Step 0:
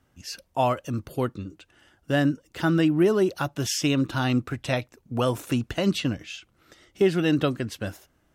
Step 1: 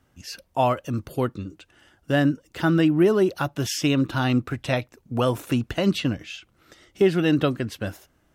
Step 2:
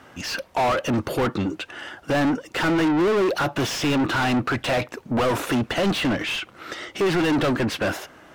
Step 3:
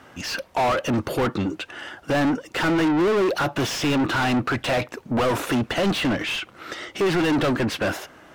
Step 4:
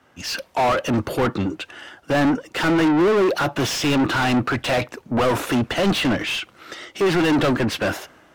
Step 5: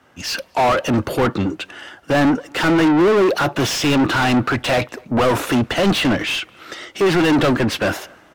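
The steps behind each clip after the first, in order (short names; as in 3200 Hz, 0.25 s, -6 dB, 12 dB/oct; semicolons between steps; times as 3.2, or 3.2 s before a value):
dynamic EQ 7200 Hz, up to -4 dB, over -49 dBFS, Q 0.87; gain +2 dB
overdrive pedal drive 37 dB, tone 1900 Hz, clips at -7 dBFS; gain -6.5 dB
nothing audible
three-band expander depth 40%; gain +2.5 dB
speakerphone echo 0.24 s, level -27 dB; gain +3 dB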